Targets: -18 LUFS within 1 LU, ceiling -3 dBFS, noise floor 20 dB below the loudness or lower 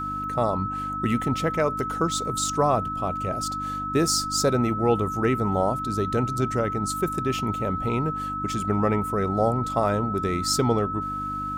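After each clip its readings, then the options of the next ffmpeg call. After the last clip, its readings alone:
hum 50 Hz; highest harmonic 300 Hz; hum level -34 dBFS; steady tone 1.3 kHz; tone level -28 dBFS; loudness -25.0 LUFS; peak level -8.5 dBFS; loudness target -18.0 LUFS
-> -af "bandreject=f=50:t=h:w=4,bandreject=f=100:t=h:w=4,bandreject=f=150:t=h:w=4,bandreject=f=200:t=h:w=4,bandreject=f=250:t=h:w=4,bandreject=f=300:t=h:w=4"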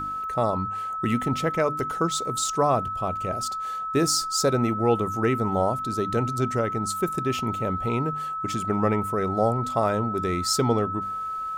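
hum not found; steady tone 1.3 kHz; tone level -28 dBFS
-> -af "bandreject=f=1300:w=30"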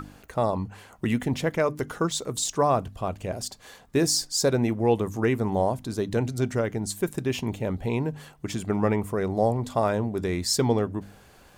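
steady tone not found; loudness -26.5 LUFS; peak level -10.0 dBFS; loudness target -18.0 LUFS
-> -af "volume=2.66,alimiter=limit=0.708:level=0:latency=1"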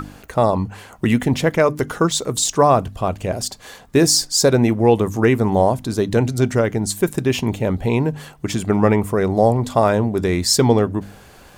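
loudness -18.0 LUFS; peak level -3.0 dBFS; noise floor -45 dBFS

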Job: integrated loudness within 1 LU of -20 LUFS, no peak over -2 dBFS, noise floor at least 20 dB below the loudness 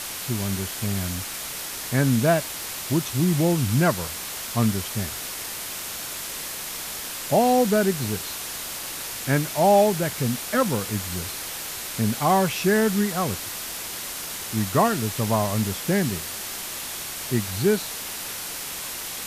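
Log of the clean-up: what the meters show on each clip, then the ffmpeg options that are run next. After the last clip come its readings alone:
noise floor -33 dBFS; noise floor target -45 dBFS; loudness -24.5 LUFS; peak level -7.5 dBFS; loudness target -20.0 LUFS
-> -af "afftdn=nr=12:nf=-33"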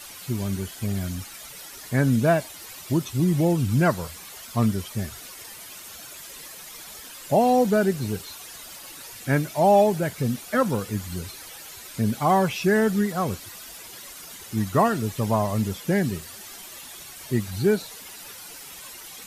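noise floor -42 dBFS; noise floor target -44 dBFS
-> -af "afftdn=nr=6:nf=-42"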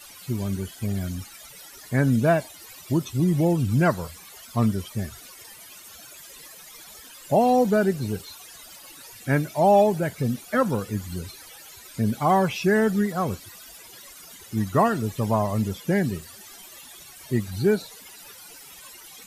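noise floor -46 dBFS; loudness -24.0 LUFS; peak level -9.0 dBFS; loudness target -20.0 LUFS
-> -af "volume=1.58"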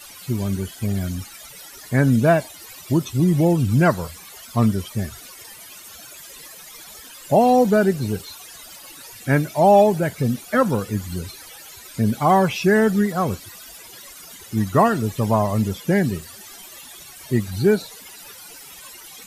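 loudness -20.0 LUFS; peak level -5.0 dBFS; noise floor -42 dBFS

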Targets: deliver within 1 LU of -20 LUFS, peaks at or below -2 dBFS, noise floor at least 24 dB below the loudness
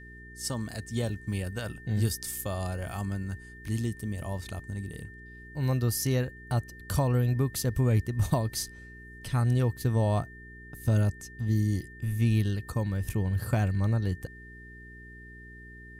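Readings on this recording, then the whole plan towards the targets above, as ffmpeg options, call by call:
hum 60 Hz; highest harmonic 420 Hz; hum level -48 dBFS; steady tone 1.8 kHz; tone level -48 dBFS; loudness -30.0 LUFS; peak level -13.5 dBFS; loudness target -20.0 LUFS
-> -af "bandreject=f=60:t=h:w=4,bandreject=f=120:t=h:w=4,bandreject=f=180:t=h:w=4,bandreject=f=240:t=h:w=4,bandreject=f=300:t=h:w=4,bandreject=f=360:t=h:w=4,bandreject=f=420:t=h:w=4"
-af "bandreject=f=1800:w=30"
-af "volume=3.16"

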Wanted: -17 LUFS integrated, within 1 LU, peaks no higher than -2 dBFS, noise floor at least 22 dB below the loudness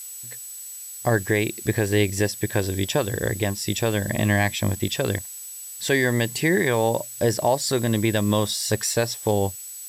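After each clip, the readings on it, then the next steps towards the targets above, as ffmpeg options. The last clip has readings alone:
steady tone 7.9 kHz; tone level -37 dBFS; noise floor -38 dBFS; noise floor target -45 dBFS; loudness -23.0 LUFS; peak level -9.0 dBFS; loudness target -17.0 LUFS
-> -af "bandreject=f=7900:w=30"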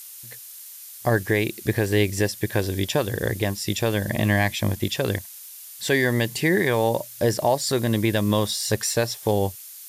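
steady tone not found; noise floor -42 dBFS; noise floor target -46 dBFS
-> -af "afftdn=nr=6:nf=-42"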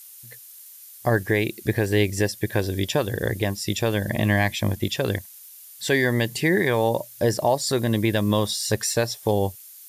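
noise floor -45 dBFS; noise floor target -46 dBFS
-> -af "afftdn=nr=6:nf=-45"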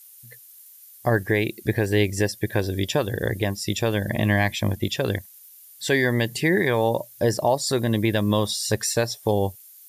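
noise floor -48 dBFS; loudness -23.5 LUFS; peak level -9.5 dBFS; loudness target -17.0 LUFS
-> -af "volume=2.11"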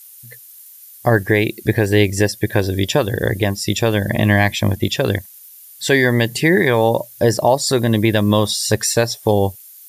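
loudness -17.0 LUFS; peak level -3.0 dBFS; noise floor -42 dBFS

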